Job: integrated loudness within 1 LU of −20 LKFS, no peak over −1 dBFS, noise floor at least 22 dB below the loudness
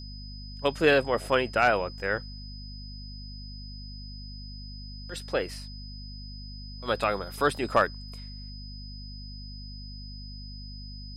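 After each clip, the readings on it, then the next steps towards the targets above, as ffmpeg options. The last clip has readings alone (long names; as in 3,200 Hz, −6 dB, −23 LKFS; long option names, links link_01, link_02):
mains hum 50 Hz; hum harmonics up to 250 Hz; level of the hum −39 dBFS; interfering tone 5,000 Hz; level of the tone −45 dBFS; integrated loudness −27.0 LKFS; sample peak −10.0 dBFS; target loudness −20.0 LKFS
→ -af "bandreject=frequency=50:width_type=h:width=6,bandreject=frequency=100:width_type=h:width=6,bandreject=frequency=150:width_type=h:width=6,bandreject=frequency=200:width_type=h:width=6,bandreject=frequency=250:width_type=h:width=6"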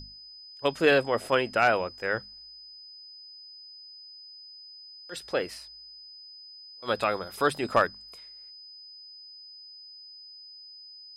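mains hum none found; interfering tone 5,000 Hz; level of the tone −45 dBFS
→ -af "bandreject=frequency=5000:width=30"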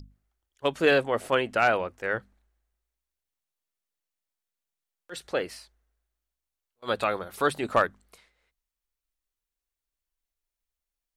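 interfering tone none found; integrated loudness −27.0 LKFS; sample peak −10.0 dBFS; target loudness −20.0 LKFS
→ -af "volume=7dB"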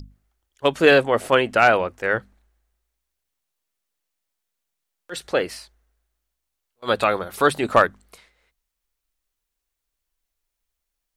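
integrated loudness −20.0 LKFS; sample peak −3.0 dBFS; background noise floor −81 dBFS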